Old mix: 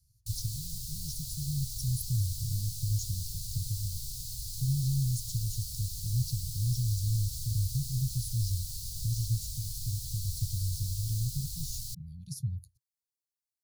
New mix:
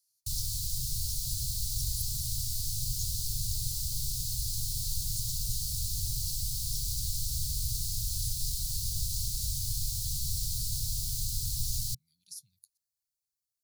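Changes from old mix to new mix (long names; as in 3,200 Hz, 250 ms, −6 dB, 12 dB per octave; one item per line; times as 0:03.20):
speech: add high-pass filter 1,100 Hz
background +6.0 dB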